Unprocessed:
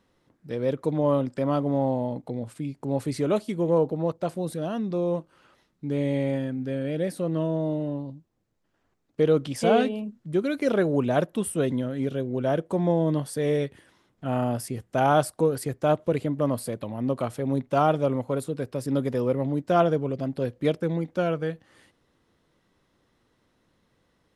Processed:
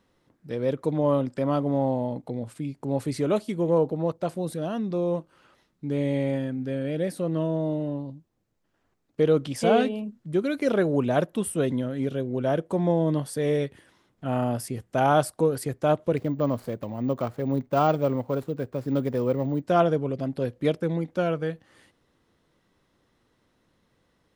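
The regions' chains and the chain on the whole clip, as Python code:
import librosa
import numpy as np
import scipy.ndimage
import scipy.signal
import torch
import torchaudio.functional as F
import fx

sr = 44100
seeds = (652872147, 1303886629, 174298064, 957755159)

y = fx.chain(x, sr, fx.median_filter(points=15),
    fx.resample_bad(factor=2, down='none', up='hold'), at=(16.17, 19.62))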